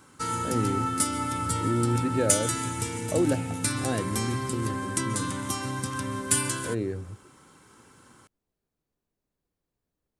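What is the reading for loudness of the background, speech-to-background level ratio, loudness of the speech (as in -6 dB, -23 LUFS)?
-28.5 LUFS, -3.0 dB, -31.5 LUFS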